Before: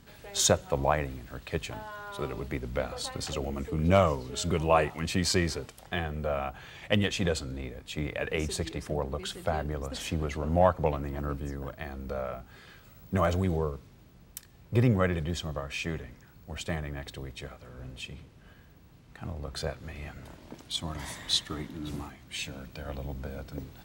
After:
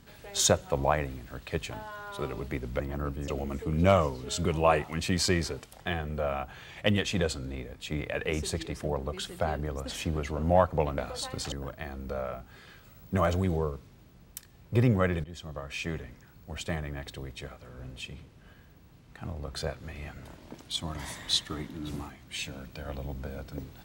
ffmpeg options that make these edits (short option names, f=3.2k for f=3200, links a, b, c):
-filter_complex "[0:a]asplit=6[a][b][c][d][e][f];[a]atrim=end=2.802[g];[b]atrim=start=11.038:end=11.522[h];[c]atrim=start=3.338:end=11.042[i];[d]atrim=start=2.798:end=3.342[j];[e]atrim=start=11.518:end=15.24,asetpts=PTS-STARTPTS,afade=t=out:st=3.718:d=0.004:c=hsin:silence=0.149624[k];[f]atrim=start=15.24,asetpts=PTS-STARTPTS,afade=t=in:d=0.85:c=qsin:silence=0.149624[l];[g][h]acrossfade=d=0.004:c1=hsin:c2=hsin[m];[m][i]acrossfade=d=0.004:c1=hsin:c2=hsin[n];[n][j]acrossfade=d=0.004:c1=hsin:c2=hsin[o];[k][l]concat=n=2:v=0:a=1[p];[o][p]acrossfade=d=0.004:c1=hsin:c2=hsin"